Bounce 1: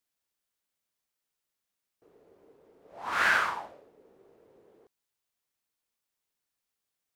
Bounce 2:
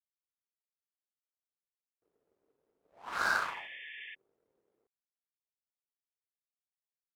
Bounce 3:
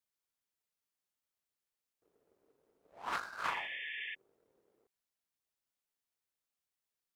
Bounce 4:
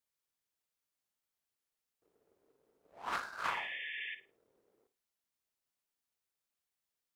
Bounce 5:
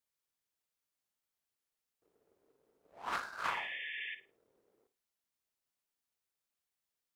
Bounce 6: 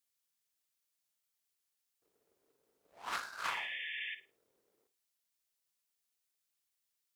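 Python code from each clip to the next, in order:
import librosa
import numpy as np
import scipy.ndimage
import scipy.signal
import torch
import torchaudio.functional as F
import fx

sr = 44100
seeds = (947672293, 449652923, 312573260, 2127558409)

y1 = fx.power_curve(x, sr, exponent=1.4)
y1 = fx.spec_repair(y1, sr, seeds[0], start_s=3.19, length_s=0.92, low_hz=1700.0, high_hz=3600.0, source='before')
y1 = F.gain(torch.from_numpy(y1), -1.5).numpy()
y2 = fx.over_compress(y1, sr, threshold_db=-37.0, ratio=-0.5)
y3 = fx.room_flutter(y2, sr, wall_m=9.3, rt60_s=0.27)
y4 = y3
y5 = fx.high_shelf(y4, sr, hz=2000.0, db=10.5)
y5 = F.gain(torch.from_numpy(y5), -5.0).numpy()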